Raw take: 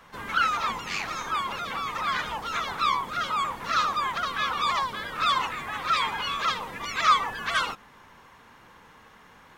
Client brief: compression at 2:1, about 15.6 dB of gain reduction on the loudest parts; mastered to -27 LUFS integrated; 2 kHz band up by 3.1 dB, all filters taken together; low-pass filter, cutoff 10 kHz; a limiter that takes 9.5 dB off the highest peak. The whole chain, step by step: low-pass 10 kHz; peaking EQ 2 kHz +4 dB; compression 2:1, threshold -43 dBFS; trim +12 dB; peak limiter -19 dBFS

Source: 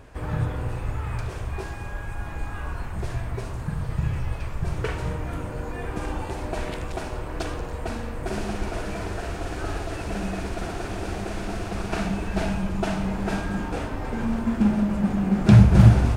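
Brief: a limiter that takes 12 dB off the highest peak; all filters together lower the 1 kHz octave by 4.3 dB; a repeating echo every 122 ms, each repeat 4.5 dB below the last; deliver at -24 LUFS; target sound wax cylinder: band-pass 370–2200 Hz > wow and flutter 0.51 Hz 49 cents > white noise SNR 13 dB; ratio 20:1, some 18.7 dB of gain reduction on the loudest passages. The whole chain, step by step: peaking EQ 1 kHz -5.5 dB; compression 20:1, threshold -26 dBFS; peak limiter -29 dBFS; band-pass 370–2200 Hz; feedback delay 122 ms, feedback 60%, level -4.5 dB; wow and flutter 0.51 Hz 49 cents; white noise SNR 13 dB; trim +18.5 dB

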